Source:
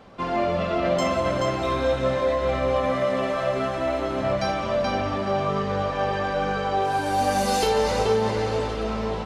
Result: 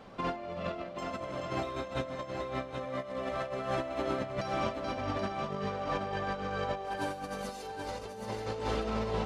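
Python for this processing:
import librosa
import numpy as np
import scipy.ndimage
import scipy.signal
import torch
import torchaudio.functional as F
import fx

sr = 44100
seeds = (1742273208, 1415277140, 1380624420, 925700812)

y = fx.peak_eq(x, sr, hz=70.0, db=-8.0, octaves=0.24)
y = fx.over_compress(y, sr, threshold_db=-28.0, ratio=-0.5)
y = y + 10.0 ** (-6.0 / 20.0) * np.pad(y, (int(778 * sr / 1000.0), 0))[:len(y)]
y = F.gain(torch.from_numpy(y), -7.5).numpy()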